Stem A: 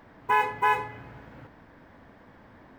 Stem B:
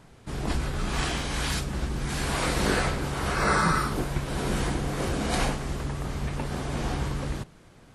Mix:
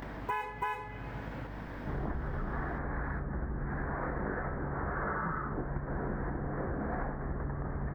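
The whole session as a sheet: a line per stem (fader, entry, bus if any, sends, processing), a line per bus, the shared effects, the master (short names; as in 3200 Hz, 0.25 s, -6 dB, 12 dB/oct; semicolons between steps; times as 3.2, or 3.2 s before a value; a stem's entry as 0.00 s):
-2.0 dB, 0.00 s, no send, gate with hold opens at -46 dBFS; upward compressor, threshold -30 dBFS
+0.5 dB, 1.60 s, no send, elliptic low-pass 1800 Hz, stop band 40 dB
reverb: off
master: hum 50 Hz, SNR 17 dB; compressor, threshold -32 dBFS, peak gain reduction 12 dB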